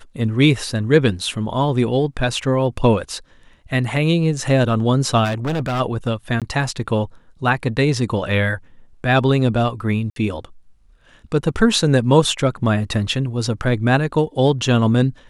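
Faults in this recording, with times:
5.24–5.81 clipped -18.5 dBFS
6.4–6.42 gap 17 ms
10.1–10.16 gap 62 ms

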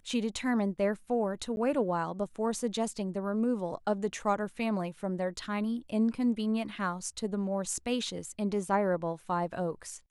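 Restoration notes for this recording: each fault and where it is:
1.56–1.57 gap 11 ms

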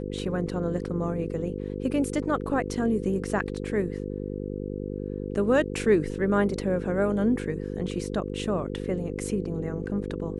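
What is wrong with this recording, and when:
buzz 50 Hz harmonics 10 -33 dBFS

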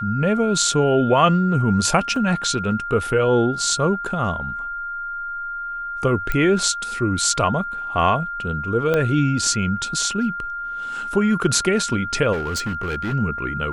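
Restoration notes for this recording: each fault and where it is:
tone 1400 Hz -26 dBFS
2.16 gap 2.1 ms
6.32 pop -10 dBFS
8.94 pop -9 dBFS
12.32–13.14 clipped -20.5 dBFS

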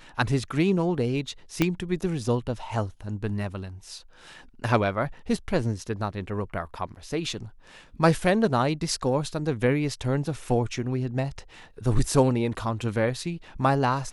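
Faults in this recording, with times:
1.62 pop -8 dBFS

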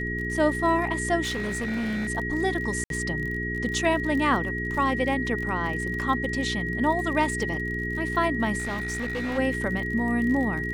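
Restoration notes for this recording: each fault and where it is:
crackle 40/s -32 dBFS
hum 60 Hz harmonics 7 -32 dBFS
tone 1900 Hz -30 dBFS
1.22–2.09 clipped -25.5 dBFS
2.84–2.9 gap 62 ms
8.58–9.39 clipped -26 dBFS

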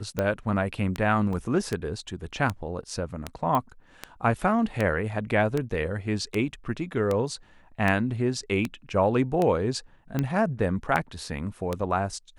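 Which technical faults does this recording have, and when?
tick 78 rpm -13 dBFS
1.33 gap 2.2 ms
3.55 pop -13 dBFS

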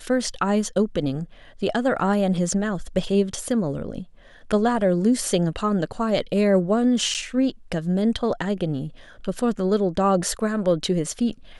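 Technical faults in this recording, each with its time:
7.14–7.15 gap 8.1 ms

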